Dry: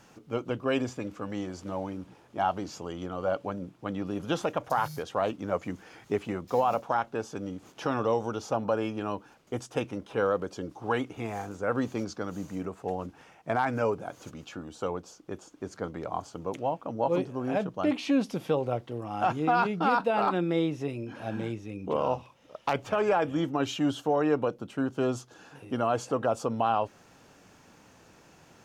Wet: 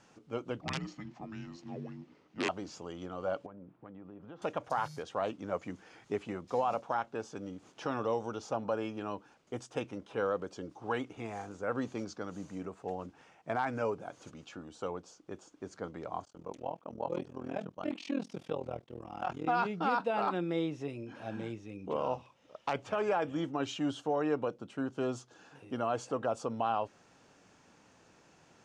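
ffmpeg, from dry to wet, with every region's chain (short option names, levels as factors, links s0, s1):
-filter_complex "[0:a]asettb=1/sr,asplit=3[s0][s1][s2];[s0]atrim=end=0.614[s3];[s1]atrim=start=0.61:end=2.49,asetpts=PTS-STARTPTS,afade=t=in:d=0.004:c=qsin,afade=t=out:st=1.876:d=0.004:c=qsin,aeval=exprs='(mod(7.5*val(0)+1,2)-1)/7.5':c=same,afreqshift=-430,highpass=150,lowpass=5200[s4];[s2]atrim=start=2.486[s5];[s3][s4]acrossfade=d=0.004:c1=hsin:c2=qsin[s6];[s6][s5]acrossfade=d=0.004:c1=qsin:c2=hsin,asettb=1/sr,asplit=3[s7][s8][s9];[s7]atrim=end=3.464[s10];[s8]atrim=start=3.46:end=4.42,asetpts=PTS-STARTPTS,afade=t=in:d=0.004:c=qsin,afade=t=out:st=0.956:d=0.004:c=qsin,lowpass=1700,acompressor=threshold=0.00891:ratio=4:attack=3.2:release=140:knee=1:detection=peak[s11];[s9]atrim=start=4.416[s12];[s10][s11]acrossfade=d=0.004:c1=hsin:c2=qsin[s13];[s13][s12]acrossfade=d=0.004:c1=qsin:c2=hsin,asettb=1/sr,asplit=3[s14][s15][s16];[s14]atrim=end=16.254[s17];[s15]atrim=start=16.25:end=19.47,asetpts=PTS-STARTPTS,afade=t=in:d=0.004:c=qsin,afade=t=out:st=3.216:d=0.004:c=qsin,agate=range=0.0224:threshold=0.00562:ratio=3:release=100:detection=peak,tremolo=f=41:d=0.947[s18];[s16]atrim=start=19.466[s19];[s17][s18]acrossfade=d=0.004:c1=hsin:c2=qsin[s20];[s20][s19]acrossfade=d=0.004:c1=qsin:c2=hsin,lowpass=f=9100:w=0.5412,lowpass=f=9100:w=1.3066,lowshelf=f=93:g=-6,volume=0.531"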